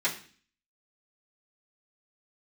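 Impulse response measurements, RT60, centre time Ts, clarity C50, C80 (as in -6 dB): 0.45 s, 16 ms, 11.5 dB, 15.0 dB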